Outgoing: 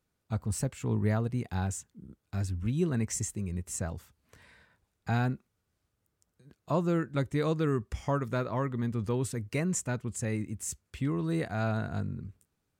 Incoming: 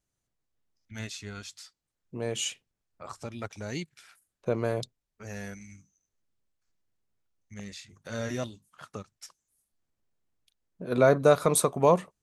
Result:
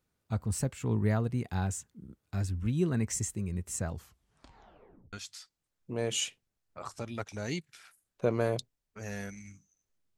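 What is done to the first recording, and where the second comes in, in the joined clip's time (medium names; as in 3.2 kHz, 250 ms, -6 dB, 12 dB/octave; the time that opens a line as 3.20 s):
outgoing
3.93 s: tape stop 1.20 s
5.13 s: go over to incoming from 1.37 s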